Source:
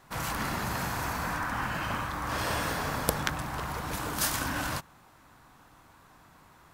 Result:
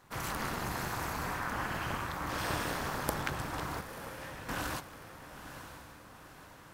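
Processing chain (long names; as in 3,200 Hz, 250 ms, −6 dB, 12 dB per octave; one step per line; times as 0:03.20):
soft clipping −15 dBFS, distortion −20 dB
amplitude modulation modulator 230 Hz, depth 85%
0:03.81–0:04.49: formant filter e
feedback delay with all-pass diffusion 956 ms, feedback 53%, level −10.5 dB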